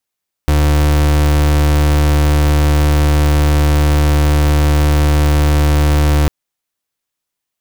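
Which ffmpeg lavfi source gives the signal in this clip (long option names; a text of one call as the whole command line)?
ffmpeg -f lavfi -i "aevalsrc='0.282*(2*lt(mod(74.5*t,1),0.36)-1)':duration=5.8:sample_rate=44100" out.wav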